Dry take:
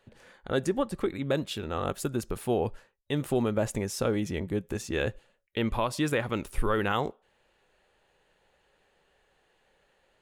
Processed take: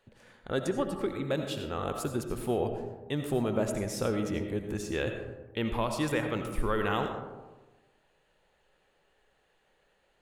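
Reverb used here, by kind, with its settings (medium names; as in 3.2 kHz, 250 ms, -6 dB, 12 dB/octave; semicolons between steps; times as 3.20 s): algorithmic reverb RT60 1.2 s, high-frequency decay 0.35×, pre-delay 45 ms, DRR 5.5 dB; trim -3 dB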